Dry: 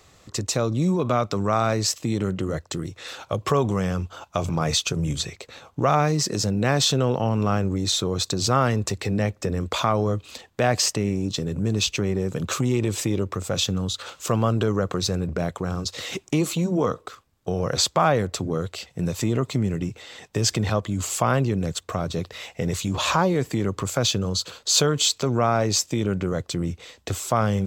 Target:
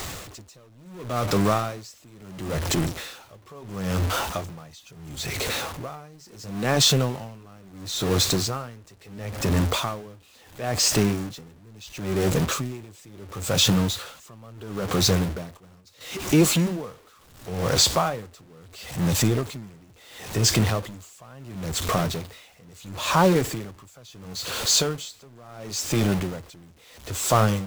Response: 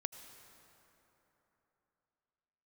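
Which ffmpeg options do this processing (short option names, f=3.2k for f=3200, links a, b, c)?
-filter_complex "[0:a]aeval=exprs='val(0)+0.5*0.0531*sgn(val(0))':c=same,asettb=1/sr,asplit=3[a][b][c];[a]atrim=end=15.574[d];[b]atrim=start=15.57:end=16.01,asetpts=PTS-STARTPTS,afade=t=in:d=0.004:c=qsin,afade=t=out:st=0.436:d=0.004:c=qsin,agate=range=-9dB:threshold=-23dB:ratio=16:detection=peak[e];[c]atrim=start=16.006[f];[d][e]acrossfade=d=0.004:c1=hsin:c2=qsin[g];[g][f]acrossfade=d=0.004:c1=qsin:c2=hsin,dynaudnorm=f=760:g=3:m=11.5dB,flanger=delay=1:depth=9.9:regen=-67:speed=0.42:shape=sinusoidal,asplit=2[h][i];[i]aeval=exprs='(mod(10.6*val(0)+1,2)-1)/10.6':c=same,volume=-11.5dB[j];[h][j]amix=inputs=2:normalize=0,aeval=exprs='val(0)*pow(10,-29*(0.5-0.5*cos(2*PI*0.73*n/s))/20)':c=same"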